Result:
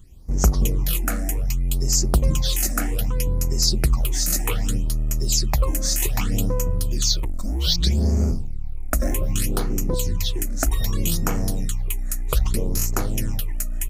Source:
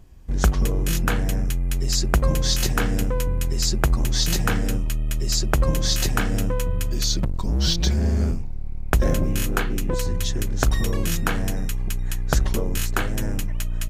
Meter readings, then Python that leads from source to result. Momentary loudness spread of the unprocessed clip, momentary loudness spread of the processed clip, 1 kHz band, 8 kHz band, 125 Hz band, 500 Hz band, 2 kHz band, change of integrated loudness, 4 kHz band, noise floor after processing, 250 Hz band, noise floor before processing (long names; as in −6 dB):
6 LU, 7 LU, −3.0 dB, +3.5 dB, 0.0 dB, −2.0 dB, −6.0 dB, +0.5 dB, +0.5 dB, −25 dBFS, −1.0 dB, −25 dBFS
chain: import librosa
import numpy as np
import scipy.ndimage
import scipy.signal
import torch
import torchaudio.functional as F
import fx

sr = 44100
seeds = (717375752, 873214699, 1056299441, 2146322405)

y = fx.high_shelf(x, sr, hz=3700.0, db=8.0)
y = fx.phaser_stages(y, sr, stages=8, low_hz=120.0, high_hz=3600.0, hz=0.64, feedback_pct=25)
y = fx.peak_eq(y, sr, hz=1600.0, db=-10.5, octaves=0.21)